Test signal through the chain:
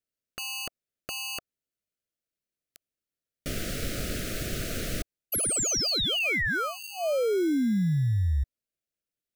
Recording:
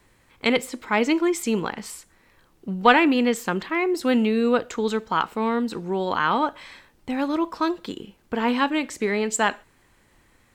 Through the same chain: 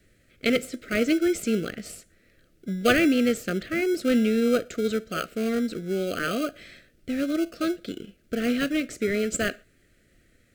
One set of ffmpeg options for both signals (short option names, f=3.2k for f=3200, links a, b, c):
-filter_complex "[0:a]asplit=2[a][b];[b]acrusher=samples=24:mix=1:aa=0.000001,volume=-7dB[c];[a][c]amix=inputs=2:normalize=0,asuperstop=centerf=930:order=8:qfactor=1.6,volume=-4dB"